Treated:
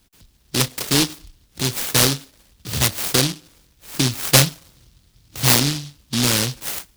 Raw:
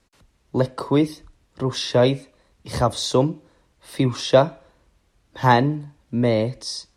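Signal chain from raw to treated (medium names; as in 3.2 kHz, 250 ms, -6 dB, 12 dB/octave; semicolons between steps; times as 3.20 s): 4.28–5.42 s: peaking EQ 120 Hz +9 dB 0.96 oct; in parallel at +2 dB: compression, threshold -31 dBFS, peak gain reduction 21.5 dB; on the sum: delay time shaken by noise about 4.1 kHz, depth 0.47 ms; trim -1.5 dB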